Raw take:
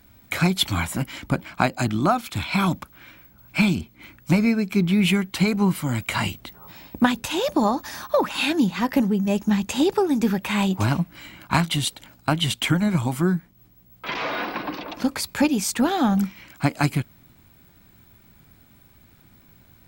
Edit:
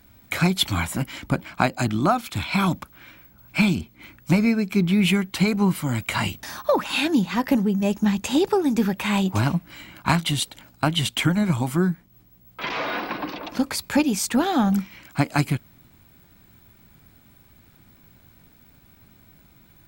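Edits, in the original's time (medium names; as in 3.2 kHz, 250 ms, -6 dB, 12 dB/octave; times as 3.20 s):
6.43–7.88 s: delete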